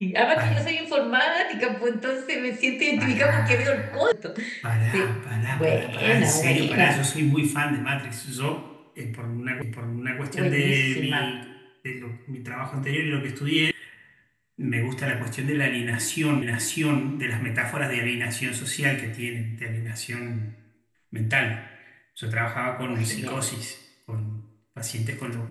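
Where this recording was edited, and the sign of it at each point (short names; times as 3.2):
4.12 sound cut off
9.62 repeat of the last 0.59 s
13.71 sound cut off
16.42 repeat of the last 0.6 s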